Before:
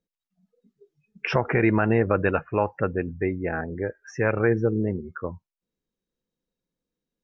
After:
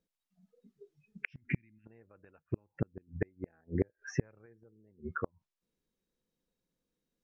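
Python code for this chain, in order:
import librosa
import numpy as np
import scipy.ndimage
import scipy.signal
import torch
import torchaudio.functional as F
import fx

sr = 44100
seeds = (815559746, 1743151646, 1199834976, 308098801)

y = fx.ellip_bandstop(x, sr, low_hz=260.0, high_hz=2200.0, order=3, stop_db=40, at=(1.26, 1.85), fade=0.02)
y = fx.band_shelf(y, sr, hz=1100.0, db=-12.5, octaves=2.7, at=(2.38, 3.1), fade=0.02)
y = fx.gate_flip(y, sr, shuts_db=-18.0, range_db=-39)
y = fx.env_lowpass_down(y, sr, base_hz=3000.0, full_db=-36.0)
y = fx.low_shelf(y, sr, hz=450.0, db=5.0, at=(3.67, 4.46))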